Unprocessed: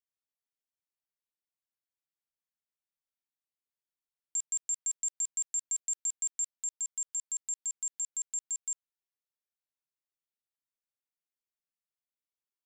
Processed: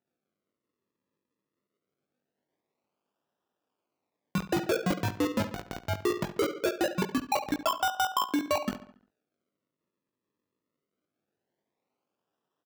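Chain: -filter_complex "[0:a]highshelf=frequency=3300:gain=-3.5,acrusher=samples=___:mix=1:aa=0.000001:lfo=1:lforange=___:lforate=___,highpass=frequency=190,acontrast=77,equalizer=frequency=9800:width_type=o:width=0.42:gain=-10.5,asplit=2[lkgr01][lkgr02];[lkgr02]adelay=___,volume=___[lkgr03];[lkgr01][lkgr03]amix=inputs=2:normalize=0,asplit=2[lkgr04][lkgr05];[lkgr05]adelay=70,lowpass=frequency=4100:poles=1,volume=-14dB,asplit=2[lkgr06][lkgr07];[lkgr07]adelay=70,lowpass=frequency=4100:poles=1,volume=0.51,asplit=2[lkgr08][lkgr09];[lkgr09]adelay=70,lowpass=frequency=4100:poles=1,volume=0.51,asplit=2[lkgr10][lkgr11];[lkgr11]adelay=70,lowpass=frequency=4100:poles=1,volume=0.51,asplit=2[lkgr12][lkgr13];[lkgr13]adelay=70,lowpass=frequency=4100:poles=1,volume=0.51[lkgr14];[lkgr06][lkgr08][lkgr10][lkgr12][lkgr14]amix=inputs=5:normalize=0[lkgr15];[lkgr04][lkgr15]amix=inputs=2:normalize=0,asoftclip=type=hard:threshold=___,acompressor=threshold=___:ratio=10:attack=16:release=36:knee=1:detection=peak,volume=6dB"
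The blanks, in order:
40, 40, 0.22, 20, -7dB, -25.5dB, -31dB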